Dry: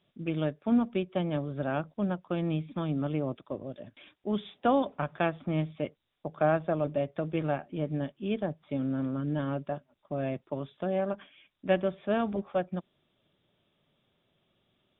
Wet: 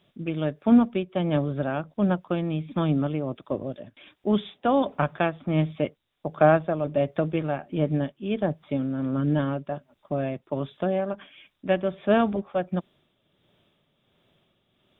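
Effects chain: tremolo 1.4 Hz, depth 51%; trim +8 dB

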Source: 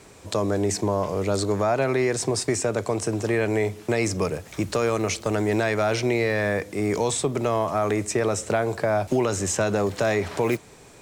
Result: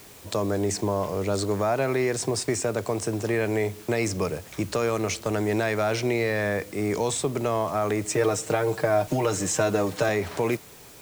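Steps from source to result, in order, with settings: word length cut 8-bit, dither triangular; 8.04–10.09 s: comb 6.5 ms, depth 72%; trim -2 dB

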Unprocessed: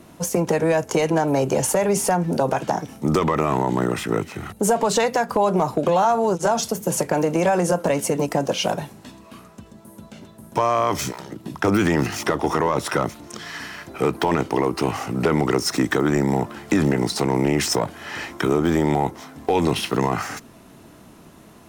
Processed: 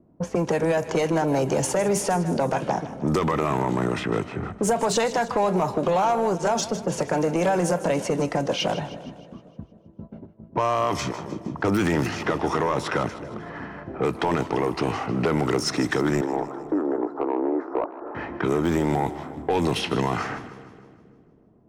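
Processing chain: gate -40 dBFS, range -14 dB; 16.21–18.15 s: elliptic band-pass 300–1300 Hz, stop band 40 dB; level-controlled noise filter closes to 520 Hz, open at -15.5 dBFS; in parallel at +3 dB: compression, threshold -32 dBFS, peak gain reduction 16 dB; on the sum: saturation -10.5 dBFS, distortion -18 dB; on a send: two-band feedback delay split 580 Hz, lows 268 ms, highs 155 ms, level -14 dB; on the sum: trim -3.5 dB

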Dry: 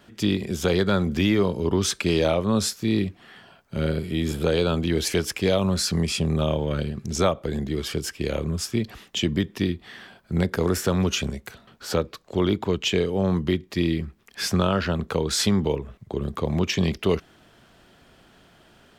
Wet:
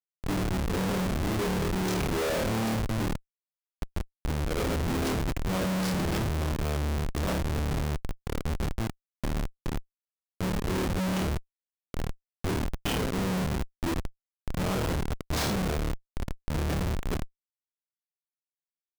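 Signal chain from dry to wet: slow attack 102 ms; flutter echo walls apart 4.6 m, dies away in 1 s; Schmitt trigger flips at -18 dBFS; trim -6.5 dB

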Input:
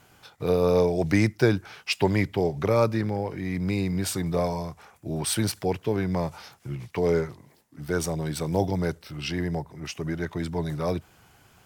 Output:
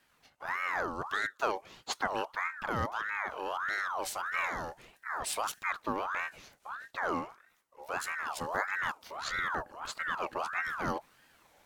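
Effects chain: gain riding within 4 dB 0.5 s; 8.98–9.60 s: frequency shift +47 Hz; ring modulator with a swept carrier 1.2 kHz, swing 45%, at 1.6 Hz; trim -6 dB

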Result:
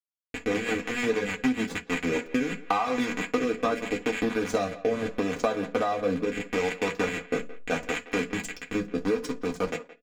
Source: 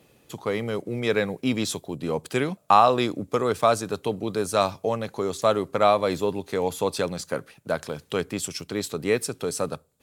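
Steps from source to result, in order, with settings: rattle on loud lows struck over -36 dBFS, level -16 dBFS; 4.19–6.19 s: fifteen-band graphic EQ 100 Hz +9 dB, 250 Hz +6 dB, 630 Hz +9 dB, 2.5 kHz -4 dB, 6.3 kHz +9 dB; 8.80–9.69 s: time-frequency box 1.6–5.2 kHz -8 dB; hysteresis with a dead band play -17 dBFS; peaking EQ 2.6 kHz -4 dB 1.5 oct; reverberation RT60 0.20 s, pre-delay 3 ms, DRR 0.5 dB; rotary cabinet horn 6.7 Hz, later 0.8 Hz, at 1.59 s; compression 16:1, threshold -25 dBFS, peak gain reduction 17.5 dB; comb 4.1 ms, depth 77%; speakerphone echo 170 ms, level -16 dB; trim +1.5 dB

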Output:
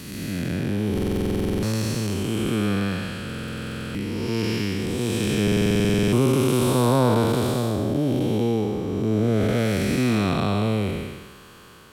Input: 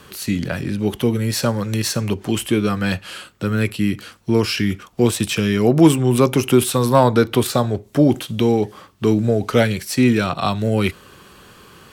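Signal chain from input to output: spectral blur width 458 ms; buffer glitch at 0.93/3.25/5.43 s, samples 2048, times 14

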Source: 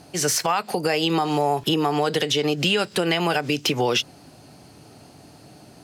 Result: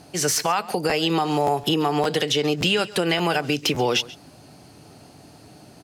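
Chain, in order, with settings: delay 136 ms -19.5 dB; crackling interface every 0.57 s, samples 512, repeat, from 0.32 s

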